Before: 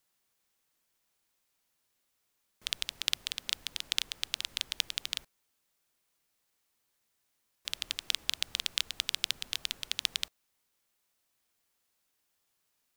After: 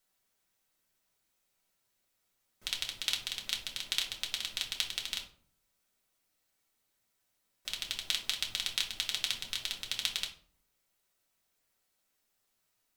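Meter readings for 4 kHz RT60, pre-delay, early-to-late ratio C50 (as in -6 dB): 0.30 s, 3 ms, 10.5 dB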